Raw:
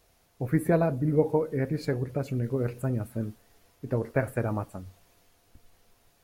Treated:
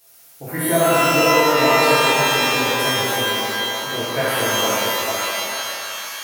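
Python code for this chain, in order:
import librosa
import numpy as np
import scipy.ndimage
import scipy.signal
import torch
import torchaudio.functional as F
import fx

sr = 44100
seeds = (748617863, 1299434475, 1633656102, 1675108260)

y = fx.riaa(x, sr, side='recording')
y = fx.echo_stepped(y, sr, ms=448, hz=480.0, octaves=0.7, feedback_pct=70, wet_db=-1.5)
y = fx.rev_shimmer(y, sr, seeds[0], rt60_s=2.4, semitones=12, shimmer_db=-2, drr_db=-10.5)
y = y * librosa.db_to_amplitude(-1.0)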